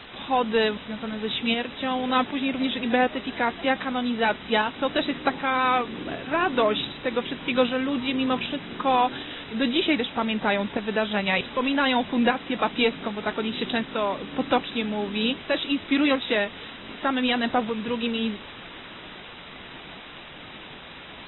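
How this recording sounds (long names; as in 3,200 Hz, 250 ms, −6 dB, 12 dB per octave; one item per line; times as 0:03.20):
tremolo saw up 1.3 Hz, depth 50%
a quantiser's noise floor 6 bits, dither triangular
AAC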